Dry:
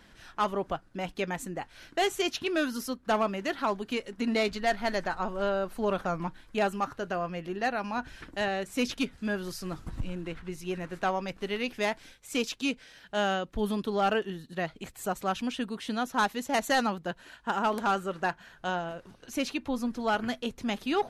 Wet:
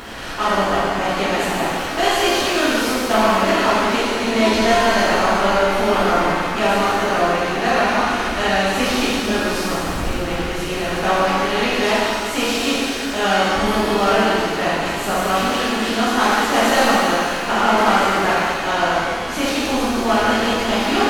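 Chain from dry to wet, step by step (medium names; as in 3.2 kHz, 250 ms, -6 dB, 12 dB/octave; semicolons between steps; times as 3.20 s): spectral levelling over time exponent 0.6; upward compressor, threshold -35 dBFS; pitch-shifted reverb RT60 2 s, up +7 st, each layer -8 dB, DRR -10.5 dB; trim -2 dB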